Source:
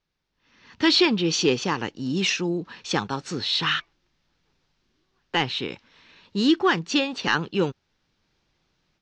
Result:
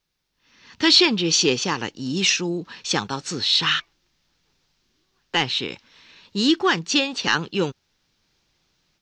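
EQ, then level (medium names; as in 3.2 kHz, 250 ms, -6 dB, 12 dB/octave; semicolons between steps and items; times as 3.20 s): treble shelf 3.9 kHz +11 dB; 0.0 dB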